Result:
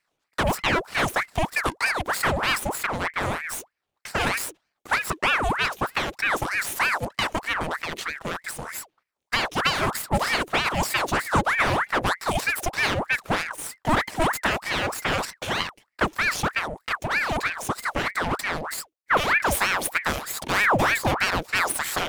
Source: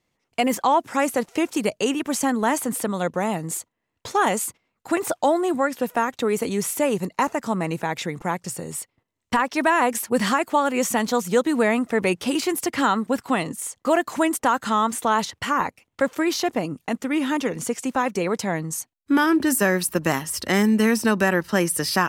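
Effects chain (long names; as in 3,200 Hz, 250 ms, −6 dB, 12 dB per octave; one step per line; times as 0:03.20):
lower of the sound and its delayed copy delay 0.31 ms
ring modulator whose carrier an LFO sweeps 1,200 Hz, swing 75%, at 3.2 Hz
level +1.5 dB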